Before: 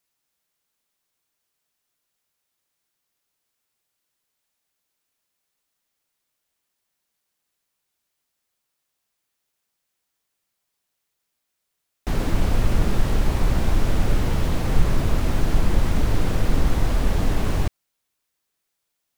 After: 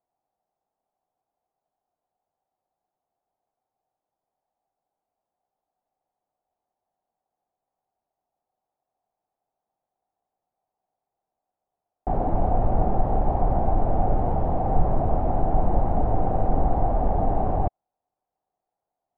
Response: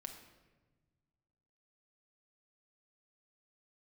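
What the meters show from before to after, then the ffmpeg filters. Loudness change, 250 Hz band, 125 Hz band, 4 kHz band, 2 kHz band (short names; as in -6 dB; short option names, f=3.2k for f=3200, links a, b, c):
-1.0 dB, -2.0 dB, -3.0 dB, under -25 dB, -16.0 dB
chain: -af "lowpass=f=750:t=q:w=7.1,volume=-3dB"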